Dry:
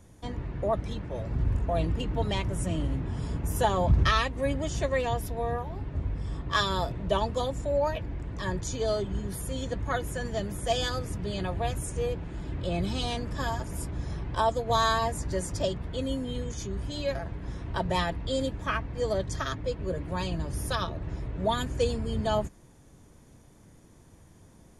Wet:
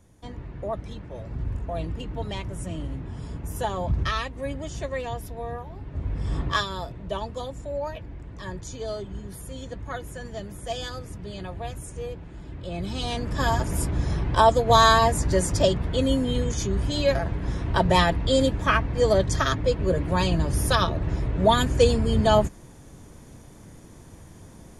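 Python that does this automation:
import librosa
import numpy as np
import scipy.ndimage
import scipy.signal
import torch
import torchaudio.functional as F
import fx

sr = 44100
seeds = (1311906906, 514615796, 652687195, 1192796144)

y = fx.gain(x, sr, db=fx.line((5.82, -3.0), (6.43, 9.0), (6.67, -4.0), (12.65, -4.0), (13.55, 8.5)))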